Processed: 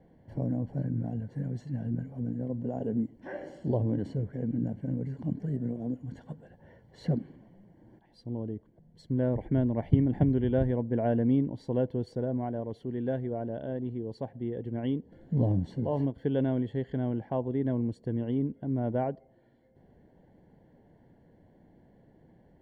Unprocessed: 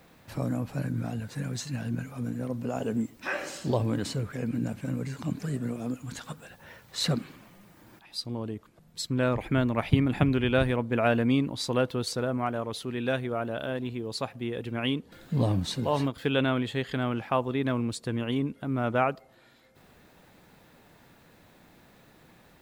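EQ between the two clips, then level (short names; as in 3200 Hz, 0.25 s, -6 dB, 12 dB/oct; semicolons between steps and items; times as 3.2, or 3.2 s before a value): running mean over 35 samples; 0.0 dB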